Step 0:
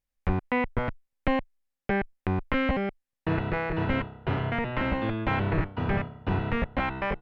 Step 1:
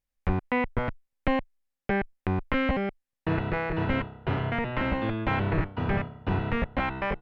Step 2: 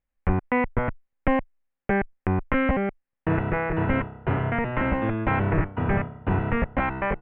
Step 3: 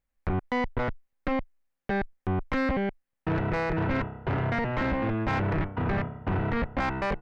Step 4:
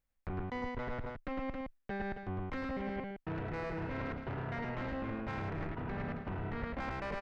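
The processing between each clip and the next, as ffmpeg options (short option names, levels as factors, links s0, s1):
-af anull
-af "lowpass=f=2400:w=0.5412,lowpass=f=2400:w=1.3066,volume=1.5"
-filter_complex "[0:a]asplit=2[s0][s1];[s1]alimiter=limit=0.119:level=0:latency=1:release=12,volume=0.794[s2];[s0][s2]amix=inputs=2:normalize=0,asoftclip=type=tanh:threshold=0.126,volume=0.631"
-af "aecho=1:1:105|214|271:0.631|0.112|0.266,areverse,acompressor=threshold=0.02:ratio=6,areverse,volume=0.75"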